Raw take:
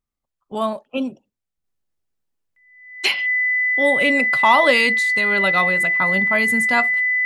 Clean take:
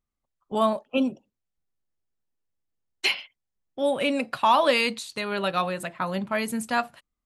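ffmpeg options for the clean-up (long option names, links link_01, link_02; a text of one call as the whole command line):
ffmpeg -i in.wav -af "bandreject=frequency=2000:width=30,asetnsamples=nb_out_samples=441:pad=0,asendcmd='1.64 volume volume -4.5dB',volume=0dB" out.wav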